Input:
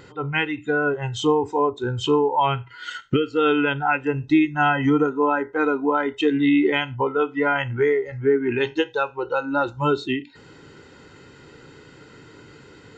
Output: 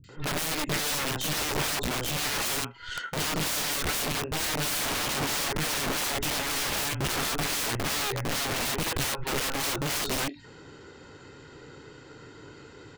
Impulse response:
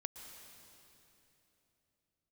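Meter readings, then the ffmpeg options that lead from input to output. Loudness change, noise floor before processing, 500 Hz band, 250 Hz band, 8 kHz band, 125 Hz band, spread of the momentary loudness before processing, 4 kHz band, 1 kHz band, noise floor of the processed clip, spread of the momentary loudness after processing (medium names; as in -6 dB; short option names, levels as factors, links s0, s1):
-6.0 dB, -48 dBFS, -14.0 dB, -14.0 dB, no reading, -5.5 dB, 6 LU, +4.0 dB, -9.5 dB, -49 dBFS, 7 LU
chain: -filter_complex "[0:a]aeval=exprs='0.398*(cos(1*acos(clip(val(0)/0.398,-1,1)))-cos(1*PI/2))+0.0126*(cos(3*acos(clip(val(0)/0.398,-1,1)))-cos(3*PI/2))+0.00891*(cos(4*acos(clip(val(0)/0.398,-1,1)))-cos(4*PI/2))+0.02*(cos(5*acos(clip(val(0)/0.398,-1,1)))-cos(5*PI/2))+0.0891*(cos(6*acos(clip(val(0)/0.398,-1,1)))-cos(6*PI/2))':c=same,acrossover=split=200|2300[s0][s1][s2];[s2]adelay=40[s3];[s1]adelay=90[s4];[s0][s4][s3]amix=inputs=3:normalize=0,aeval=exprs='(mod(14.1*val(0)+1,2)-1)/14.1':c=same,volume=0.841"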